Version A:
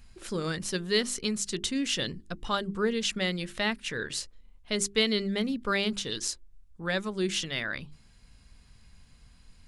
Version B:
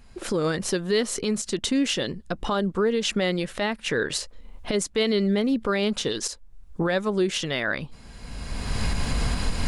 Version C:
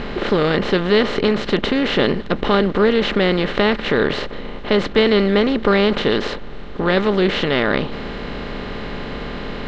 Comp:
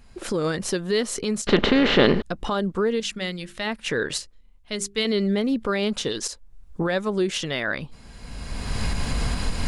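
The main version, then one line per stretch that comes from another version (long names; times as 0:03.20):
B
0:01.47–0:02.22: punch in from C
0:03.00–0:03.67: punch in from A
0:04.18–0:05.05: punch in from A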